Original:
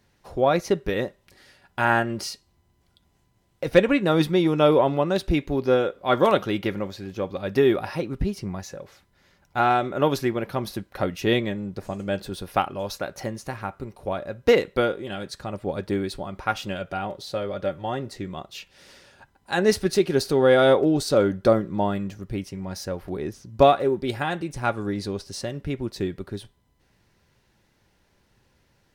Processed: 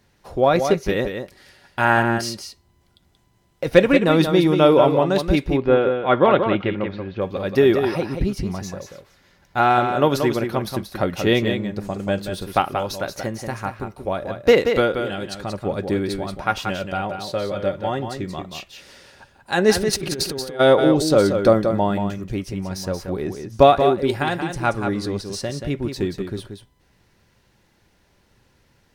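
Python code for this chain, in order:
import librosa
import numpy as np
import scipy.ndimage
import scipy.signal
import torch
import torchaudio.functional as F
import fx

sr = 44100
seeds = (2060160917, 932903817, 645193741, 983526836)

y = fx.lowpass(x, sr, hz=3200.0, slope=24, at=(5.46, 7.2), fade=0.02)
y = fx.over_compress(y, sr, threshold_db=-29.0, ratio=-1.0, at=(19.73, 20.59), fade=0.02)
y = y + 10.0 ** (-7.0 / 20.0) * np.pad(y, (int(181 * sr / 1000.0), 0))[:len(y)]
y = y * librosa.db_to_amplitude(3.5)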